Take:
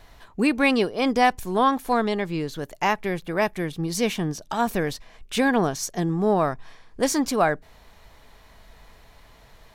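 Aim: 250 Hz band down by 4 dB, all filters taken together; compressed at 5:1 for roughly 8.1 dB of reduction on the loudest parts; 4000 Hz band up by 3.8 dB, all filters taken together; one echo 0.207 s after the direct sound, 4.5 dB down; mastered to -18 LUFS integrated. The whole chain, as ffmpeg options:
-af "equalizer=f=250:t=o:g=-5,equalizer=f=4k:t=o:g=5,acompressor=threshold=-23dB:ratio=5,aecho=1:1:207:0.596,volume=9.5dB"

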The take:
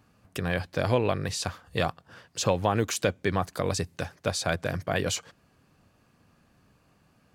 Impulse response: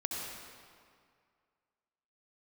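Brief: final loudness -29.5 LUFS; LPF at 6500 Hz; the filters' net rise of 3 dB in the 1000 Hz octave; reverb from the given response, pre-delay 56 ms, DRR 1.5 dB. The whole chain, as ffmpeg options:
-filter_complex "[0:a]lowpass=6.5k,equalizer=f=1k:t=o:g=4,asplit=2[a][b];[1:a]atrim=start_sample=2205,adelay=56[c];[b][c]afir=irnorm=-1:irlink=0,volume=-5dB[d];[a][d]amix=inputs=2:normalize=0,volume=-3.5dB"

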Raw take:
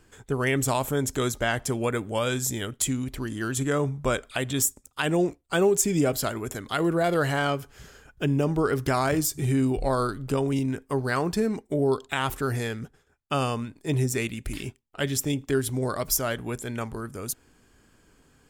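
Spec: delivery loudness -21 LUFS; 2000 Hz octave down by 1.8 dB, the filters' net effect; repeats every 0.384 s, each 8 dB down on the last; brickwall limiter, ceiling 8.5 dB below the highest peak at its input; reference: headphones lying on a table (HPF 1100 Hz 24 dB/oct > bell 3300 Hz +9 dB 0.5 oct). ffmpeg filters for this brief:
-af "equalizer=f=2k:t=o:g=-3.5,alimiter=limit=-17.5dB:level=0:latency=1,highpass=f=1.1k:w=0.5412,highpass=f=1.1k:w=1.3066,equalizer=f=3.3k:t=o:w=0.5:g=9,aecho=1:1:384|768|1152|1536|1920:0.398|0.159|0.0637|0.0255|0.0102,volume=12dB"

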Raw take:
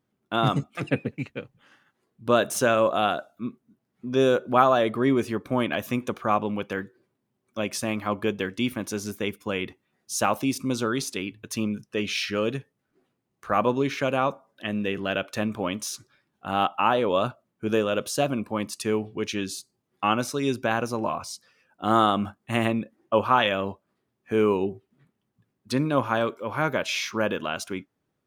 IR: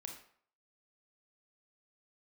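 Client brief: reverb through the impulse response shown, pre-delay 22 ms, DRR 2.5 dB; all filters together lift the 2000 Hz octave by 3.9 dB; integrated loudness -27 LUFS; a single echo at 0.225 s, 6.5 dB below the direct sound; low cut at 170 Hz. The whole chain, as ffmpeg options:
-filter_complex "[0:a]highpass=170,equalizer=f=2k:t=o:g=5.5,aecho=1:1:225:0.473,asplit=2[a][b];[1:a]atrim=start_sample=2205,adelay=22[c];[b][c]afir=irnorm=-1:irlink=0,volume=1.5dB[d];[a][d]amix=inputs=2:normalize=0,volume=-4.5dB"

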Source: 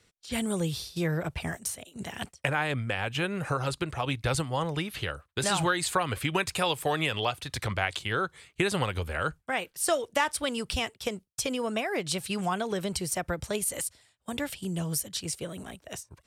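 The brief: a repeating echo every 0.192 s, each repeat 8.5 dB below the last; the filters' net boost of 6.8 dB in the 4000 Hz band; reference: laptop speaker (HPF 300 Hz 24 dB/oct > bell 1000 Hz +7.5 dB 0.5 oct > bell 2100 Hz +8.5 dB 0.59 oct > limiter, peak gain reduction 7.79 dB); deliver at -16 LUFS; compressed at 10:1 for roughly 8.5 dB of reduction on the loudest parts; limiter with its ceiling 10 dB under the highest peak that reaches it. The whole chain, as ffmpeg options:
-af "equalizer=f=4k:t=o:g=7,acompressor=threshold=-29dB:ratio=10,alimiter=limit=-22.5dB:level=0:latency=1,highpass=f=300:w=0.5412,highpass=f=300:w=1.3066,equalizer=f=1k:t=o:w=0.5:g=7.5,equalizer=f=2.1k:t=o:w=0.59:g=8.5,aecho=1:1:192|384|576|768:0.376|0.143|0.0543|0.0206,volume=18.5dB,alimiter=limit=-5.5dB:level=0:latency=1"

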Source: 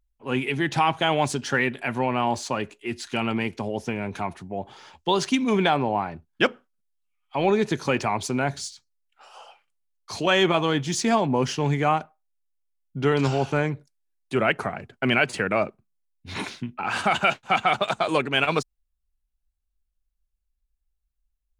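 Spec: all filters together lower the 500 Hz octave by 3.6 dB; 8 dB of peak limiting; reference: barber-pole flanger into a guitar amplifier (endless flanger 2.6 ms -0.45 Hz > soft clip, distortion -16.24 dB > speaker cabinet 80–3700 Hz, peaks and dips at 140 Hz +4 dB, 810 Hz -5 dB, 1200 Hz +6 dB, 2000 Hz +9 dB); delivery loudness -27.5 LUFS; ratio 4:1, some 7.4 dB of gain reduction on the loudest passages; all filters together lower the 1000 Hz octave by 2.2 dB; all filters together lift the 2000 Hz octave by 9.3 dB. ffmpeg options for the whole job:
-filter_complex "[0:a]equalizer=f=500:t=o:g=-3,equalizer=f=1k:t=o:g=-6.5,equalizer=f=2k:t=o:g=7.5,acompressor=threshold=-23dB:ratio=4,alimiter=limit=-17dB:level=0:latency=1,asplit=2[a][b];[b]adelay=2.6,afreqshift=-0.45[c];[a][c]amix=inputs=2:normalize=1,asoftclip=threshold=-26dB,highpass=80,equalizer=f=140:t=q:w=4:g=4,equalizer=f=810:t=q:w=4:g=-5,equalizer=f=1.2k:t=q:w=4:g=6,equalizer=f=2k:t=q:w=4:g=9,lowpass=f=3.7k:w=0.5412,lowpass=f=3.7k:w=1.3066,volume=4.5dB"

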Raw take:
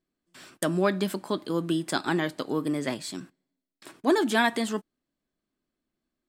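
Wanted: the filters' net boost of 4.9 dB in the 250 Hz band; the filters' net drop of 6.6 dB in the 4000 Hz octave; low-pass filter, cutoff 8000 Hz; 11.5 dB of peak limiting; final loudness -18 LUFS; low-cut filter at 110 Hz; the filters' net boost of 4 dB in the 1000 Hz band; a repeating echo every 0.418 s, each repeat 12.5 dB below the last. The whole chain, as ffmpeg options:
-af "highpass=110,lowpass=8k,equalizer=f=250:t=o:g=6.5,equalizer=f=1k:t=o:g=5,equalizer=f=4k:t=o:g=-8.5,alimiter=limit=-18dB:level=0:latency=1,aecho=1:1:418|836|1254:0.237|0.0569|0.0137,volume=10.5dB"

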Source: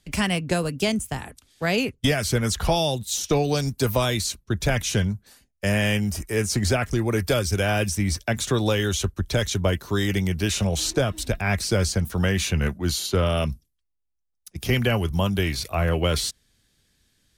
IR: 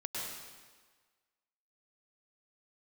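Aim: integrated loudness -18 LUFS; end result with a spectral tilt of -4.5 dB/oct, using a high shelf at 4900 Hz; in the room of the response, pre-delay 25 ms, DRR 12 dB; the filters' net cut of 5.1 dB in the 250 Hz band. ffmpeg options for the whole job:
-filter_complex "[0:a]equalizer=f=250:t=o:g=-7.5,highshelf=f=4.9k:g=-5,asplit=2[a][b];[1:a]atrim=start_sample=2205,adelay=25[c];[b][c]afir=irnorm=-1:irlink=0,volume=-14.5dB[d];[a][d]amix=inputs=2:normalize=0,volume=8dB"

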